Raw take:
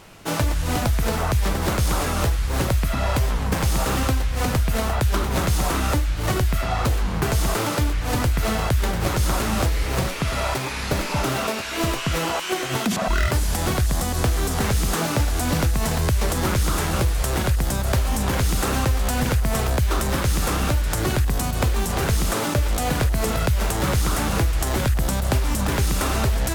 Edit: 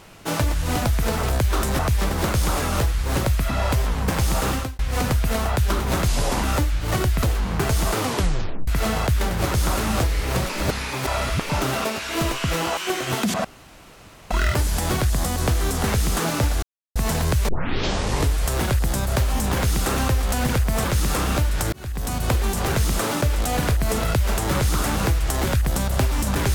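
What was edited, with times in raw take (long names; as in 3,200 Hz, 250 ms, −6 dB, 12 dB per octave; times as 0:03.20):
0:03.93–0:04.23: fade out
0:05.52–0:05.79: play speed 76%
0:06.58–0:06.85: remove
0:07.60: tape stop 0.70 s
0:10.12–0:11.12: reverse
0:13.07: splice in room tone 0.86 s
0:15.39–0:15.72: silence
0:16.25: tape start 0.93 s
0:19.61–0:20.17: move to 0:01.23
0:21.05–0:21.53: fade in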